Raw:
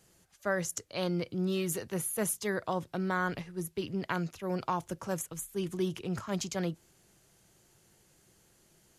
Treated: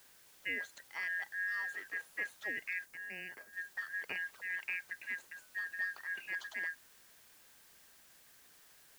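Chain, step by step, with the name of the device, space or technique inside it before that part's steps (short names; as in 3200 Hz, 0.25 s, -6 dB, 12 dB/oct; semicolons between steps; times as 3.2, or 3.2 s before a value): split-band scrambled radio (four-band scrambler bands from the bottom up 2143; BPF 330–2900 Hz; white noise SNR 20 dB); 2.85–3.53 bell 2100 Hz -7.5 dB 2.5 oct; gain -6 dB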